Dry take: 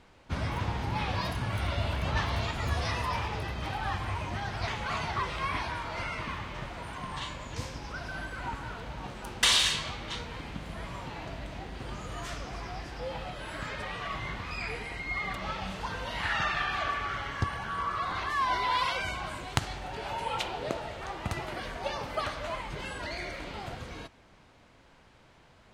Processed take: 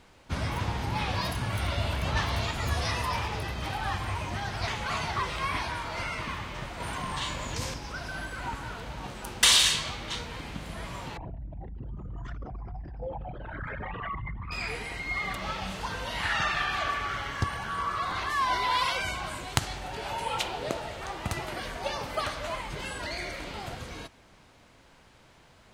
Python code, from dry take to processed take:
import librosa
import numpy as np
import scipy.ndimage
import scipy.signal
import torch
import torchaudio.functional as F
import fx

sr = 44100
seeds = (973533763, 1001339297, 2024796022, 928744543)

y = fx.env_flatten(x, sr, amount_pct=50, at=(6.8, 7.74))
y = fx.envelope_sharpen(y, sr, power=3.0, at=(11.17, 14.52))
y = fx.high_shelf(y, sr, hz=5900.0, db=8.5)
y = y * librosa.db_to_amplitude(1.0)